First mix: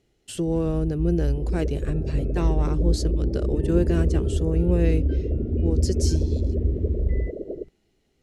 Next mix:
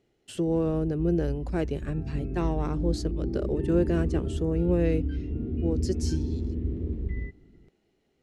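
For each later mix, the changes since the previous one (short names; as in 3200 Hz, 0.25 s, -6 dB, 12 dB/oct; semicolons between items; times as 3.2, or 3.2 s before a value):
speech: add high shelf 3400 Hz -9.5 dB; second sound: muted; master: add low shelf 96 Hz -11.5 dB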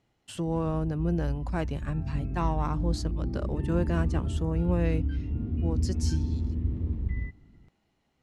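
master: add fifteen-band EQ 100 Hz +4 dB, 400 Hz -11 dB, 1000 Hz +8 dB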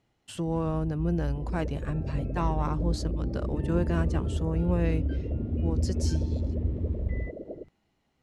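second sound: unmuted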